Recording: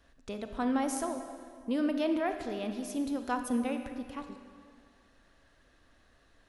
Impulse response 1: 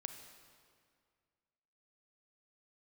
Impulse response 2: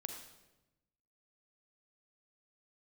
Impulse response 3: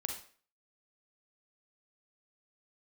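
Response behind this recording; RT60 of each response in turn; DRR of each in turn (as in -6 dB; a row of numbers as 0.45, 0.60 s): 1; 2.1, 1.0, 0.45 s; 6.5, 4.0, 2.5 dB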